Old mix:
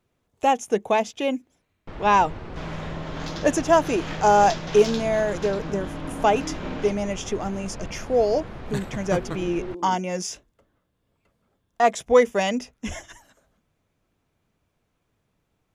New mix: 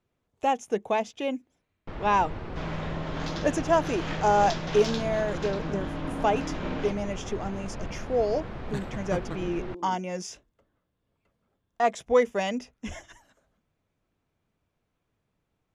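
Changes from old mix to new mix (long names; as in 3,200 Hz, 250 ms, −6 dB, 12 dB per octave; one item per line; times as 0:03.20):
speech −5.0 dB
master: add high-shelf EQ 8,000 Hz −8.5 dB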